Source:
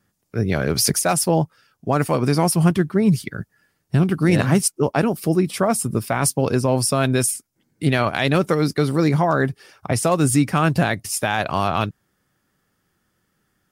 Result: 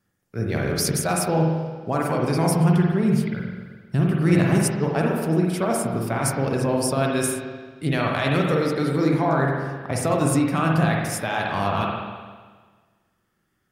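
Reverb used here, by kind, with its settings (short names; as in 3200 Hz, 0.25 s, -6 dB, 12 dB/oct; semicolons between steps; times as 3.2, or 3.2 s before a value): spring tank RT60 1.5 s, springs 44/50 ms, chirp 40 ms, DRR -1 dB; gain -6 dB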